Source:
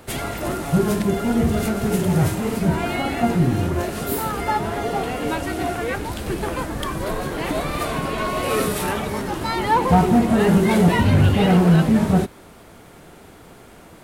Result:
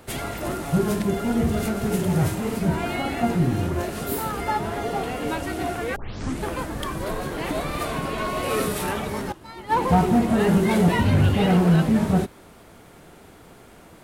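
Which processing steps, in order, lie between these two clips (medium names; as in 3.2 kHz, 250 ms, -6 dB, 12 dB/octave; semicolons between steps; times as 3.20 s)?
5.96 s: tape start 0.48 s; 9.32–9.77 s: upward expansion 2.5:1, over -25 dBFS; trim -3 dB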